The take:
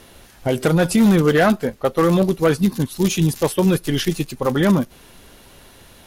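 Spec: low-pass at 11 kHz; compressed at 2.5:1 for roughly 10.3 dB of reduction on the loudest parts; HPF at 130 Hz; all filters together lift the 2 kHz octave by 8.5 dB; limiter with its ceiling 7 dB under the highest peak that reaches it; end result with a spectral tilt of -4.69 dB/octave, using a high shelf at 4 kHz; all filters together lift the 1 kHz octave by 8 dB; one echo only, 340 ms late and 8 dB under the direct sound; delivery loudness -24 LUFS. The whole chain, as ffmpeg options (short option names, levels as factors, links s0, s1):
-af "highpass=130,lowpass=11000,equalizer=f=1000:t=o:g=8,equalizer=f=2000:t=o:g=7,highshelf=f=4000:g=4.5,acompressor=threshold=0.0708:ratio=2.5,alimiter=limit=0.2:level=0:latency=1,aecho=1:1:340:0.398,volume=1.12"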